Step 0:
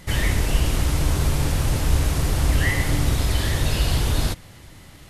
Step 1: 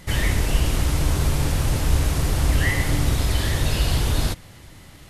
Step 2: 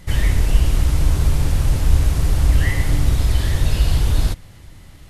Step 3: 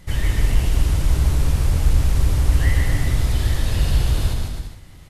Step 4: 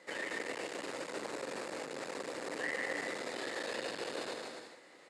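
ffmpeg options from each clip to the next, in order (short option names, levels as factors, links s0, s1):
-af anull
-af "lowshelf=f=100:g=10.5,volume=0.75"
-filter_complex "[0:a]asoftclip=type=hard:threshold=0.501,asplit=2[s0][s1];[s1]aecho=0:1:150|262.5|346.9|410.2|457.6:0.631|0.398|0.251|0.158|0.1[s2];[s0][s2]amix=inputs=2:normalize=0,volume=0.668"
-af "asoftclip=type=tanh:threshold=0.178,highpass=f=320:w=0.5412,highpass=f=320:w=1.3066,equalizer=f=510:t=q:w=4:g=8,equalizer=f=1800:t=q:w=4:g=4,equalizer=f=3200:t=q:w=4:g=-7,equalizer=f=5900:t=q:w=4:g=-8,lowpass=f=7800:w=0.5412,lowpass=f=7800:w=1.3066,volume=0.562"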